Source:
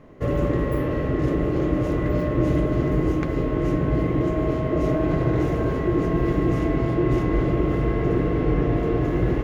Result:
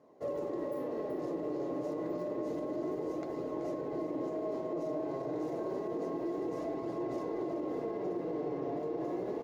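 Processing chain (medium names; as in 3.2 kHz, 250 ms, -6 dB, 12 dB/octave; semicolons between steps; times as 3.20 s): high-pass 400 Hz 12 dB/octave; high-order bell 2 kHz -12.5 dB; flange 0.29 Hz, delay 0.6 ms, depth 6.9 ms, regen +59%; treble shelf 5.7 kHz -6 dB; on a send: delay 380 ms -10 dB; on the sum: peak limiter -25.5 dBFS, peak gain reduction 5.5 dB; trim -2.5 dB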